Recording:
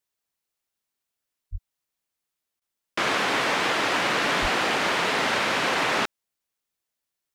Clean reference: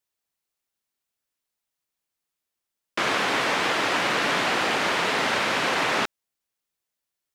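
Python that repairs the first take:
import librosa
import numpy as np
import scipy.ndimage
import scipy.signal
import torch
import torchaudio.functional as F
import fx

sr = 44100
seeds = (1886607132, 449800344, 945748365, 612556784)

y = fx.fix_declip(x, sr, threshold_db=-16.0)
y = fx.fix_deplosive(y, sr, at_s=(1.51, 4.41))
y = fx.fix_interpolate(y, sr, at_s=(2.6,), length_ms=14.0)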